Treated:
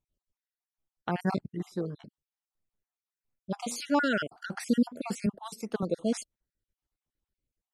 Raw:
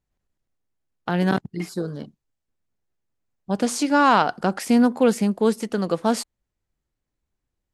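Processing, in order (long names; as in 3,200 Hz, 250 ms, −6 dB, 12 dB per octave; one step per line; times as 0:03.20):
time-frequency cells dropped at random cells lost 50%
0:01.57–0:01.99: high-shelf EQ 4,700 Hz → 6,700 Hz −10.5 dB
0:05.26–0:05.83: multiband upward and downward expander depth 100%
level −5.5 dB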